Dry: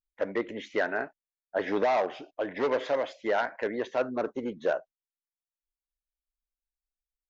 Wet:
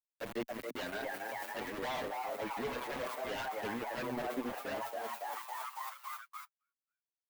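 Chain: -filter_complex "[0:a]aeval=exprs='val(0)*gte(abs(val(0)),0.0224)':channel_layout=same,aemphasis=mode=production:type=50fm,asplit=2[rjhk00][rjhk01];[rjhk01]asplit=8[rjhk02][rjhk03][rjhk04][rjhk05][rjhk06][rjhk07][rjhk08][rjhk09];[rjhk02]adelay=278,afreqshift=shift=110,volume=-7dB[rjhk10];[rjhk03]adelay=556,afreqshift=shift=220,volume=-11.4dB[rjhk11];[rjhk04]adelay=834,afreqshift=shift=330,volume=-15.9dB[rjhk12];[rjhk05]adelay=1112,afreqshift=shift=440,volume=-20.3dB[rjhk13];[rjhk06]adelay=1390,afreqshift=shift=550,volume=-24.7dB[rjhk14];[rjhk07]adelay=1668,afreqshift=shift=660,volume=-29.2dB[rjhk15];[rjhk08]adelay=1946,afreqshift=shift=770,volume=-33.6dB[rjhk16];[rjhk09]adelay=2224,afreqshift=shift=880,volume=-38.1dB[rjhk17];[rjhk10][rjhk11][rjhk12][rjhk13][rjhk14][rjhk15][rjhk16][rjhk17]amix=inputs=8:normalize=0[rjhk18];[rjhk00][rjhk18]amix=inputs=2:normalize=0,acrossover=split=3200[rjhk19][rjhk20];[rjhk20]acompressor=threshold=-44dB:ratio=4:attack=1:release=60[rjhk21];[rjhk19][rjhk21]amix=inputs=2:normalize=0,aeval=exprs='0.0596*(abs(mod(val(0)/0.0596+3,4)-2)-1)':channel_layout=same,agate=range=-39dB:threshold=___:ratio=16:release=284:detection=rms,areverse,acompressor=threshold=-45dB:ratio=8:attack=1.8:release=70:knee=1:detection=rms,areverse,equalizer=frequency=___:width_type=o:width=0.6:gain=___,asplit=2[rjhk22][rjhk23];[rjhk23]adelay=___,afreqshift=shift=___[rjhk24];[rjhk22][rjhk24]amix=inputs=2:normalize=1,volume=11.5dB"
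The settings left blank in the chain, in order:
-52dB, 240, 6.5, 7, 0.83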